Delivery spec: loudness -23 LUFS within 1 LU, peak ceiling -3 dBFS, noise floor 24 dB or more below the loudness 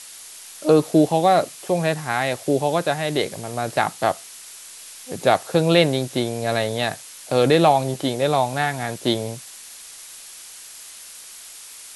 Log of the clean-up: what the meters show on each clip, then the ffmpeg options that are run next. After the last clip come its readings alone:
noise floor -41 dBFS; noise floor target -45 dBFS; loudness -21.0 LUFS; peak -2.5 dBFS; loudness target -23.0 LUFS
-> -af "afftdn=nr=6:nf=-41"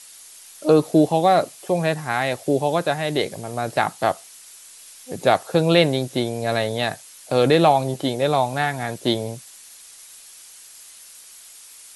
noise floor -45 dBFS; loudness -21.0 LUFS; peak -2.5 dBFS; loudness target -23.0 LUFS
-> -af "volume=-2dB"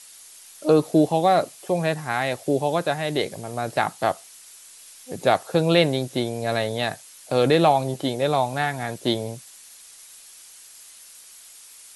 loudness -23.0 LUFS; peak -4.5 dBFS; noise floor -47 dBFS

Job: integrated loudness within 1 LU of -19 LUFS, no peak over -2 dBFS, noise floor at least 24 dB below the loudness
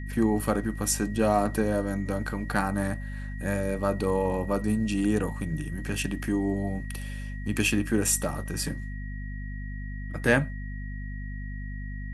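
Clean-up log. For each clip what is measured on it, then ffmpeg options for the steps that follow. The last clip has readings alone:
hum 50 Hz; harmonics up to 250 Hz; hum level -32 dBFS; steady tone 1900 Hz; tone level -45 dBFS; loudness -29.0 LUFS; peak -7.5 dBFS; loudness target -19.0 LUFS
-> -af "bandreject=f=50:t=h:w=6,bandreject=f=100:t=h:w=6,bandreject=f=150:t=h:w=6,bandreject=f=200:t=h:w=6,bandreject=f=250:t=h:w=6"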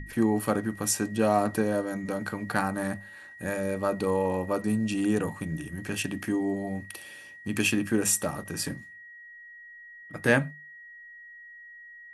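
hum none; steady tone 1900 Hz; tone level -45 dBFS
-> -af "bandreject=f=1.9k:w=30"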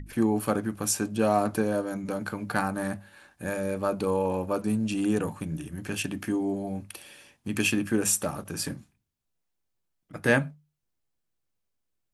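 steady tone none; loudness -28.5 LUFS; peak -7.5 dBFS; loudness target -19.0 LUFS
-> -af "volume=9.5dB,alimiter=limit=-2dB:level=0:latency=1"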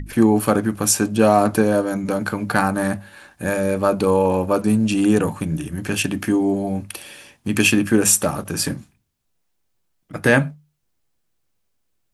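loudness -19.0 LUFS; peak -2.0 dBFS; noise floor -70 dBFS

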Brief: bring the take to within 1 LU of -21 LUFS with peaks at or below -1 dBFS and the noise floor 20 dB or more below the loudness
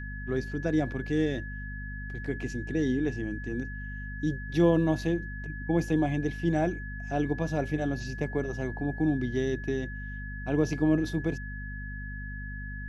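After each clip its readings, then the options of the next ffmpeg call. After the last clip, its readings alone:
hum 50 Hz; harmonics up to 250 Hz; hum level -36 dBFS; steady tone 1700 Hz; tone level -41 dBFS; loudness -30.5 LUFS; peak -11.0 dBFS; loudness target -21.0 LUFS
-> -af "bandreject=f=50:t=h:w=4,bandreject=f=100:t=h:w=4,bandreject=f=150:t=h:w=4,bandreject=f=200:t=h:w=4,bandreject=f=250:t=h:w=4"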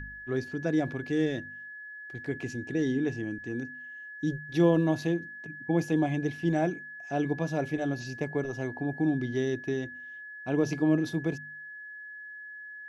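hum none; steady tone 1700 Hz; tone level -41 dBFS
-> -af "bandreject=f=1.7k:w=30"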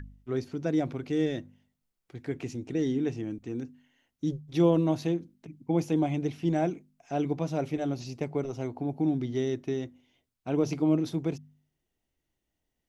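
steady tone none; loudness -30.0 LUFS; peak -11.5 dBFS; loudness target -21.0 LUFS
-> -af "volume=9dB"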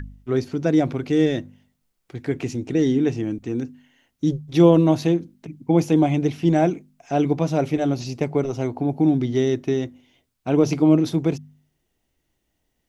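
loudness -21.0 LUFS; peak -2.5 dBFS; noise floor -74 dBFS

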